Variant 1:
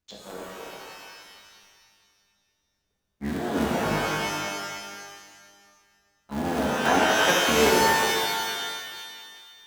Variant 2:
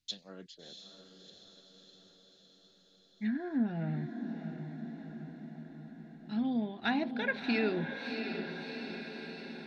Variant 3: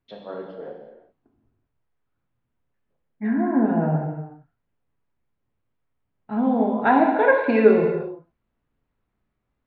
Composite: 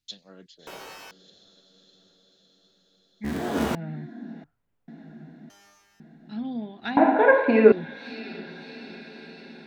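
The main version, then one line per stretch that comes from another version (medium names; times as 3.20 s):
2
0.67–1.11 s: from 1
3.24–3.75 s: from 1
4.44–4.88 s: from 3
5.50–6.00 s: from 1
6.97–7.72 s: from 3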